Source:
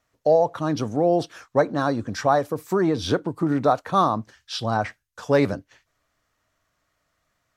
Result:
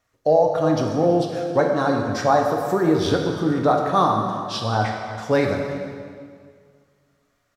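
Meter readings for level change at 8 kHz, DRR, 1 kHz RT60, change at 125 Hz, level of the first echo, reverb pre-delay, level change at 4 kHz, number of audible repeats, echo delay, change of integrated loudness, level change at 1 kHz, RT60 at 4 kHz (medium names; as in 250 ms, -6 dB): +2.0 dB, 1.0 dB, 1.9 s, +3.0 dB, -17.5 dB, 3 ms, +2.5 dB, 1, 331 ms, +2.0 dB, +3.0 dB, 1.7 s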